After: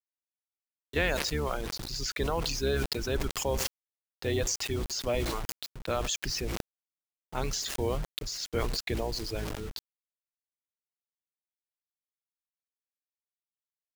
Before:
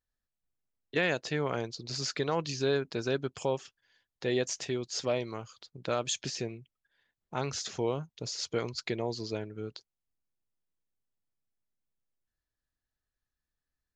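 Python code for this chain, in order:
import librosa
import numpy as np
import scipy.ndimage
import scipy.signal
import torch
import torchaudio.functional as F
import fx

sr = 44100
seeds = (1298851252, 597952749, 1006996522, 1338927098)

y = fx.octave_divider(x, sr, octaves=2, level_db=3.0)
y = fx.low_shelf(y, sr, hz=62.0, db=10.0)
y = fx.echo_feedback(y, sr, ms=94, feedback_pct=40, wet_db=-17.0)
y = fx.dereverb_blind(y, sr, rt60_s=1.6)
y = fx.low_shelf(y, sr, hz=180.0, db=-7.0)
y = fx.quant_dither(y, sr, seeds[0], bits=8, dither='none')
y = fx.sustainer(y, sr, db_per_s=22.0)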